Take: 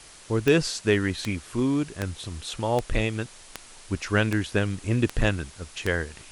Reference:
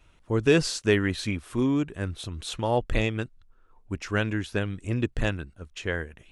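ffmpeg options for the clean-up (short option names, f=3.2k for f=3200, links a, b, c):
-af "adeclick=t=4,afwtdn=0.005,asetnsamples=n=441:p=0,asendcmd='3.5 volume volume -3.5dB',volume=0dB"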